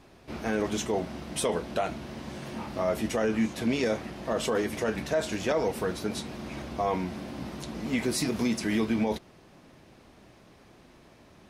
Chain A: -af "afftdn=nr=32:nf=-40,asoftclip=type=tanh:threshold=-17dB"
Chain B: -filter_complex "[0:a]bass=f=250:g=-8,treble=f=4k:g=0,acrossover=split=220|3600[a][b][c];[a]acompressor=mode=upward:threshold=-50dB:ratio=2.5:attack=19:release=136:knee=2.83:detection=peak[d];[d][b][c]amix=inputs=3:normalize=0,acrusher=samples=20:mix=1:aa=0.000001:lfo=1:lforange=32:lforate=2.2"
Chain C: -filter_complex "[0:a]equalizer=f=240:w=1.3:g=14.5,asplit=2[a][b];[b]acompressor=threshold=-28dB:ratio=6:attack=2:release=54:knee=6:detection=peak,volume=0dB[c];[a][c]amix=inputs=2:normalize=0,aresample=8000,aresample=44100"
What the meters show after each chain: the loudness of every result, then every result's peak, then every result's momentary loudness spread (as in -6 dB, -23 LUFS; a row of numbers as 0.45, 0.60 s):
-31.5, -31.5, -19.0 LUFS; -18.5, -17.0, -4.0 dBFS; 11, 12, 10 LU